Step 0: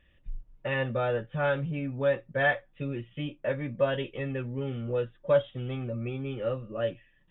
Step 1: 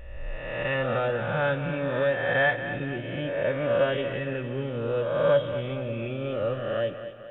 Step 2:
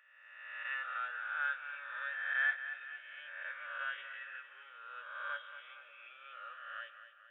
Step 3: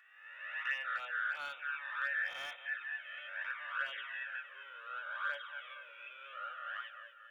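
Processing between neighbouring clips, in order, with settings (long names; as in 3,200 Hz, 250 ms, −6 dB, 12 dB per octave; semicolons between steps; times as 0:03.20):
peak hold with a rise ahead of every peak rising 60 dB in 1.43 s; echo with a time of its own for lows and highs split 380 Hz, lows 166 ms, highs 231 ms, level −11 dB
four-pole ladder high-pass 1,300 Hz, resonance 65%; level −3.5 dB
in parallel at −6 dB: gain into a clipping stage and back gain 32.5 dB; on the sum: flanger swept by the level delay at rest 2.8 ms, full sweep at −31 dBFS; level +3 dB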